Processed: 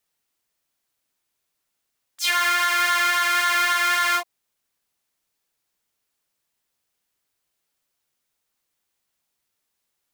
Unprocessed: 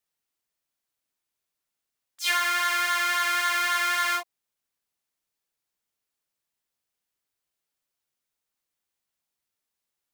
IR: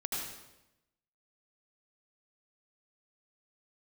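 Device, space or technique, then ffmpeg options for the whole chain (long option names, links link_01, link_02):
limiter into clipper: -af "alimiter=limit=-16.5dB:level=0:latency=1:release=225,asoftclip=type=hard:threshold=-19.5dB,volume=7dB"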